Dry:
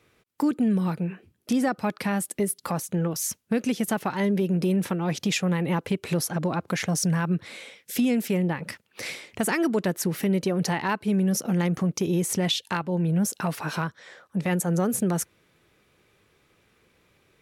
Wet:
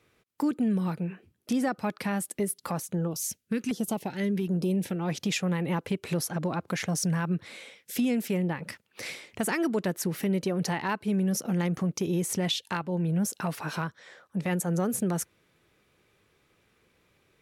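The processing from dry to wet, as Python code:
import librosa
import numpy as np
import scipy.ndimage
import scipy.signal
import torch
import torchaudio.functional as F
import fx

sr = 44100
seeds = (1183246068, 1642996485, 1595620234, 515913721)

y = fx.filter_lfo_notch(x, sr, shape='saw_down', hz=1.3, low_hz=510.0, high_hz=2700.0, q=0.97, at=(2.94, 4.96))
y = F.gain(torch.from_numpy(y), -3.5).numpy()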